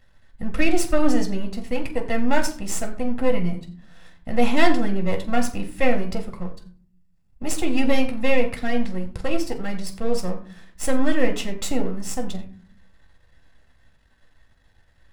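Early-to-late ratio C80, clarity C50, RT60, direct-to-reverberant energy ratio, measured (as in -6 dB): 14.5 dB, 12.0 dB, 0.45 s, 3.0 dB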